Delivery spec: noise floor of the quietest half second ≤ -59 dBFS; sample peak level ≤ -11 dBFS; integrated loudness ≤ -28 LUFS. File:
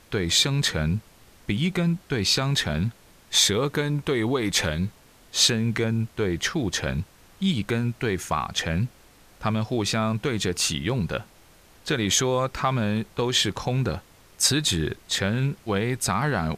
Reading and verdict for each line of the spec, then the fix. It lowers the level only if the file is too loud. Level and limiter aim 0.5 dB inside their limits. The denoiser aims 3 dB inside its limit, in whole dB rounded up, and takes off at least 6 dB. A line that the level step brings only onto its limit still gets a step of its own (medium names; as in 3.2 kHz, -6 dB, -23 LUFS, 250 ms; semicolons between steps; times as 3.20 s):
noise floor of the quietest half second -53 dBFS: fail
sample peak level -6.5 dBFS: fail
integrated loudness -24.5 LUFS: fail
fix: noise reduction 6 dB, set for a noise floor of -53 dBFS; trim -4 dB; peak limiter -11.5 dBFS